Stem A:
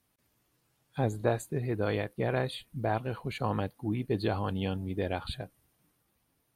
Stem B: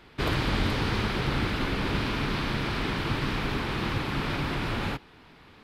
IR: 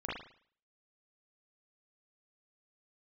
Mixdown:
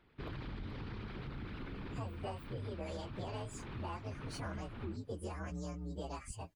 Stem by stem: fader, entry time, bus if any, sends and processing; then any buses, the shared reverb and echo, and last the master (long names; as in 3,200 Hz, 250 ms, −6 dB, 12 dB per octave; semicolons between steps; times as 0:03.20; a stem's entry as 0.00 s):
−1.5 dB, 1.00 s, no send, partials spread apart or drawn together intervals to 129%
−15.0 dB, 0.00 s, no send, spectral envelope exaggerated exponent 1.5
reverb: not used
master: downward compressor, threshold −39 dBFS, peak gain reduction 11.5 dB